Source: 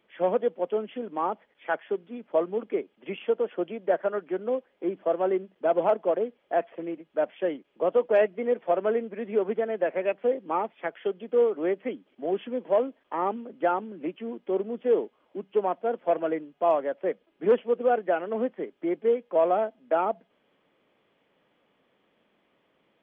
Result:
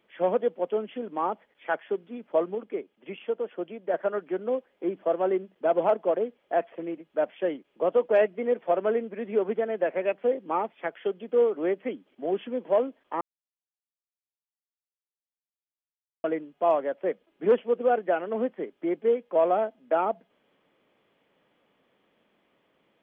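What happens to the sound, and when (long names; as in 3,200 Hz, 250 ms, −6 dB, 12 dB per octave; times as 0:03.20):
0:02.55–0:03.94: clip gain −4 dB
0:13.21–0:16.24: silence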